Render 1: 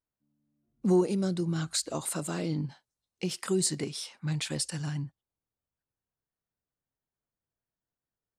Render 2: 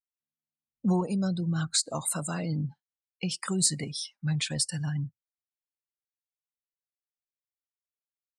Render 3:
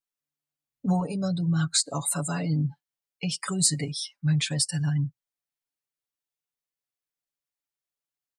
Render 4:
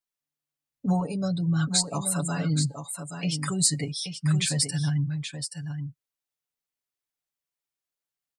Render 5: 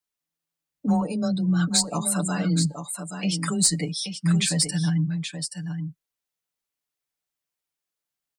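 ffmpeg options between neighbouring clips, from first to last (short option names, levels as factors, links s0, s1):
-af "afftdn=nr=29:nf=-42,equalizer=f=360:t=o:w=0.93:g=-12.5,volume=1.68"
-af "aecho=1:1:7:0.89"
-af "aecho=1:1:827:0.398"
-filter_complex "[0:a]asplit=2[s0][s1];[s1]aeval=exprs='clip(val(0),-1,0.1)':c=same,volume=0.355[s2];[s0][s2]amix=inputs=2:normalize=0,afreqshift=17"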